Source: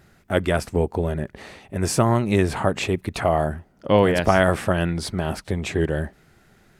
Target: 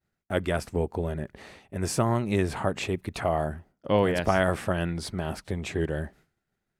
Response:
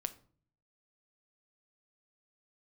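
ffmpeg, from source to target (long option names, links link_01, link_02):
-af "agate=range=-33dB:threshold=-42dB:ratio=3:detection=peak,volume=-6dB"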